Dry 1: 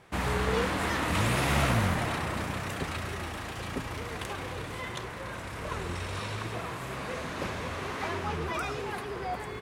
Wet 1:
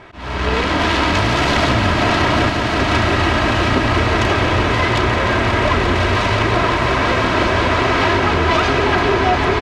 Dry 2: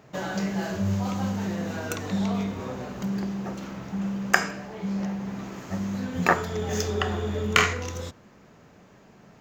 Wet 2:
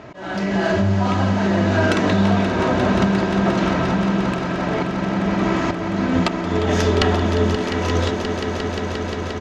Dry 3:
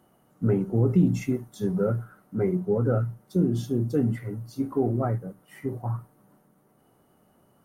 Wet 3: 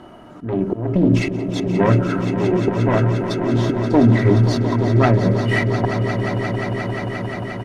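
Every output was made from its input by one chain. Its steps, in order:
self-modulated delay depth 0.55 ms; AGC gain up to 5.5 dB; LPF 4000 Hz 12 dB/oct; de-hum 69.95 Hz, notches 9; compressor 5:1, threshold -30 dBFS; auto swell 0.412 s; comb 3.1 ms, depth 43%; swelling echo 0.176 s, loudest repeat 5, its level -11 dB; normalise peaks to -2 dBFS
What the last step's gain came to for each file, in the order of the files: +16.0, +14.5, +21.0 dB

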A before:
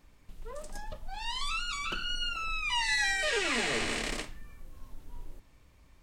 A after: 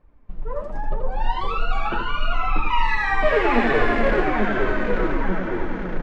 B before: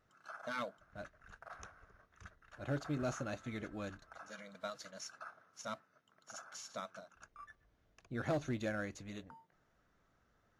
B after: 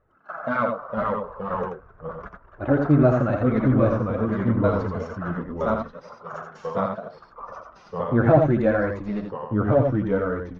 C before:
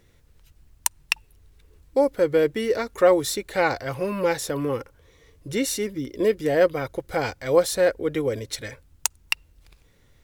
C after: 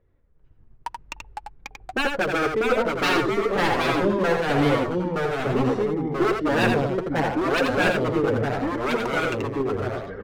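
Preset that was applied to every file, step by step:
gate -51 dBFS, range -10 dB; LPF 1200 Hz 12 dB/oct; dynamic EQ 790 Hz, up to +3 dB, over -37 dBFS, Q 1.9; wavefolder -20.5 dBFS; flange 0.79 Hz, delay 1.6 ms, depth 7.7 ms, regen +24%; on a send: echo 82 ms -5 dB; on the sum: echoes that change speed 0.402 s, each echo -2 st, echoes 2; match loudness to -23 LUFS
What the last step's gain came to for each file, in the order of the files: +16.5, +22.0, +6.5 dB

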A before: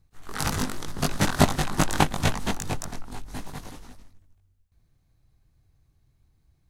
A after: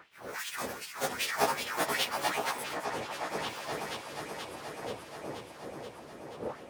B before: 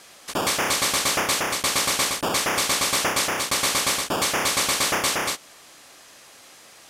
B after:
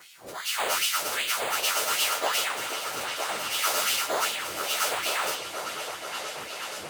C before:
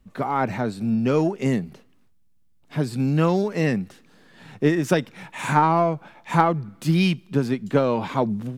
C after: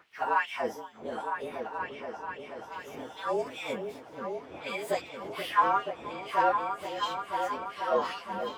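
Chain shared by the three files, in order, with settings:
inharmonic rescaling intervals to 111%; wind noise 120 Hz -22 dBFS; low shelf 77 Hz +7 dB; harmonic-percussive split percussive -5 dB; reverse; compressor, threshold -24 dBFS; reverse; LFO high-pass sine 2.6 Hz 480–3000 Hz; on a send: repeats that get brighter 0.48 s, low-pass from 400 Hz, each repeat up 2 oct, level -3 dB; on the sum: normalise peaks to -12 dBFS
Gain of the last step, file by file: +5.0, +2.5, +1.0 dB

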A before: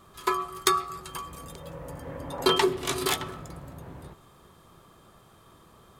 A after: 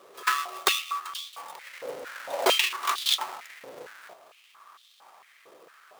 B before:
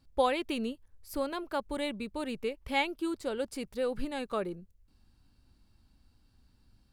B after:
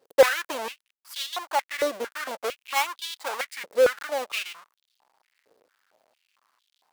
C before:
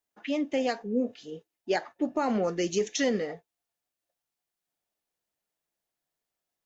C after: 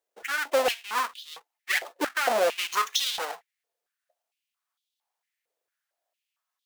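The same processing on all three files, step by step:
half-waves squared off; stepped high-pass 4.4 Hz 480–3500 Hz; match loudness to -27 LUFS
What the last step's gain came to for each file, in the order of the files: -4.5, -0.5, -2.5 dB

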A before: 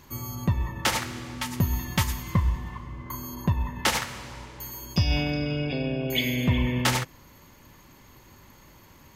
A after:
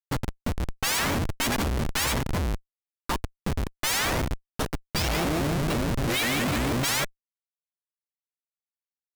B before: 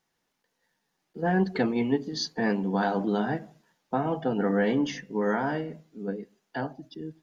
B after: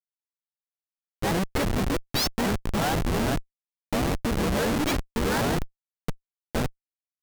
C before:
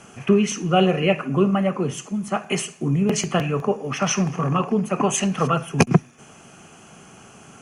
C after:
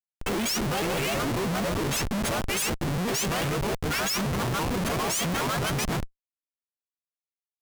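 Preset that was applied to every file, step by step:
frequency quantiser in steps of 3 st; low shelf 210 Hz -7 dB; sample leveller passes 2; spring tank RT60 3.4 s, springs 31/56 ms, chirp 65 ms, DRR 11 dB; Schmitt trigger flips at -19 dBFS; shaped vibrato saw up 6.1 Hz, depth 250 cents; match loudness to -27 LUFS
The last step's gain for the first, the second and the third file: -4.5, 0.0, -11.0 dB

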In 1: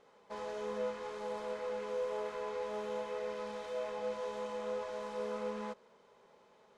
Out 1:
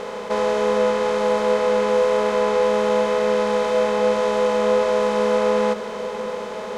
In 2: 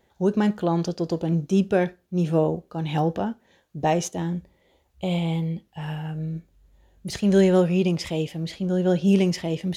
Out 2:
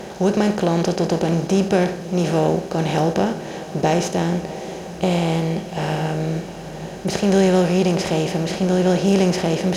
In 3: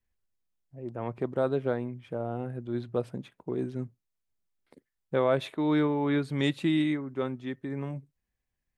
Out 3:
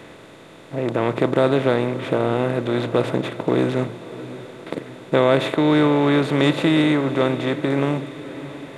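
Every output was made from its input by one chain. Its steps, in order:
per-bin compression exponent 0.4; diffused feedback echo 0.638 s, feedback 57%, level -15.5 dB; match loudness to -20 LUFS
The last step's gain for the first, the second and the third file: +16.0, -0.5, +6.0 dB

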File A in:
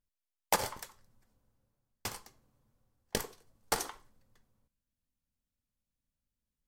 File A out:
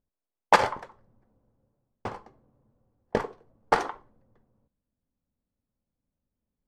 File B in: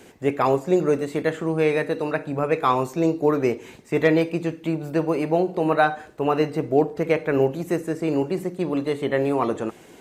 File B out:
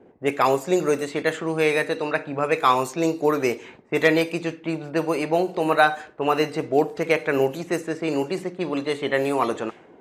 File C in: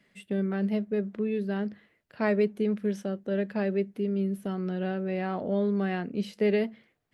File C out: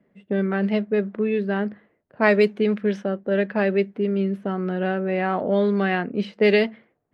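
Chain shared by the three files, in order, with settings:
low-pass opened by the level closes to 560 Hz, open at -17.5 dBFS; tilt +2.5 dB/oct; normalise peaks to -3 dBFS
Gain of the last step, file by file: +14.0, +2.0, +10.5 dB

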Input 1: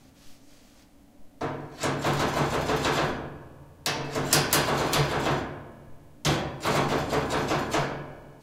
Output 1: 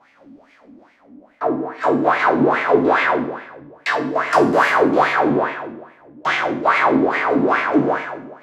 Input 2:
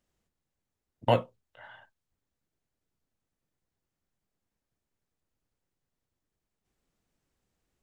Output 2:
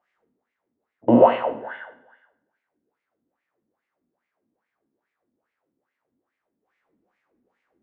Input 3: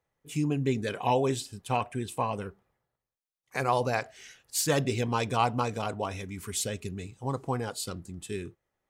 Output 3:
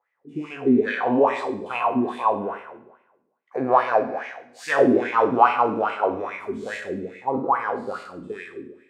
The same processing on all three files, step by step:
spectral trails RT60 1.08 s; low shelf 240 Hz -10 dB; wah 2.4 Hz 240–2200 Hz, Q 5.3; tilt -2 dB/oct; Schroeder reverb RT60 0.56 s, combs from 33 ms, DRR 10 dB; normalise peaks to -1.5 dBFS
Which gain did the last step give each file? +18.5, +20.0, +16.0 dB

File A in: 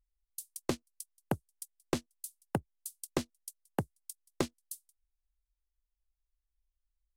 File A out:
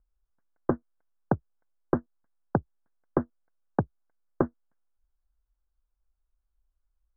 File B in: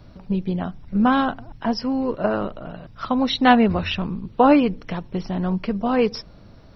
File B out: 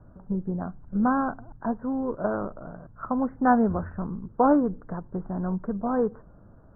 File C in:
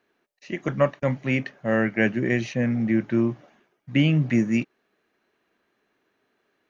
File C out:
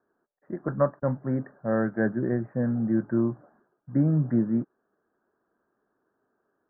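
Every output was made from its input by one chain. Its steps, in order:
steep low-pass 1600 Hz 72 dB/oct; normalise peaks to -9 dBFS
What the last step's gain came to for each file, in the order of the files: +7.5, -5.5, -2.5 dB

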